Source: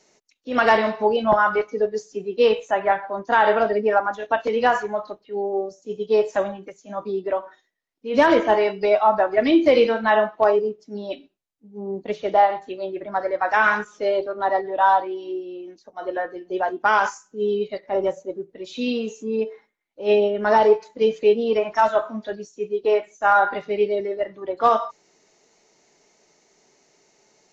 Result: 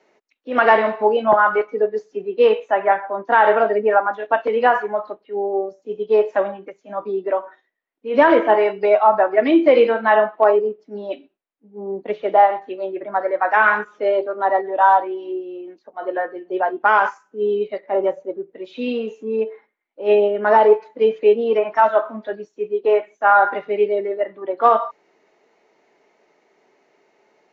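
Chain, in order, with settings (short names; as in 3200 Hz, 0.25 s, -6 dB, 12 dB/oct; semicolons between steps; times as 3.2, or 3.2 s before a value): three-band isolator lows -15 dB, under 230 Hz, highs -24 dB, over 3000 Hz; gain +3.5 dB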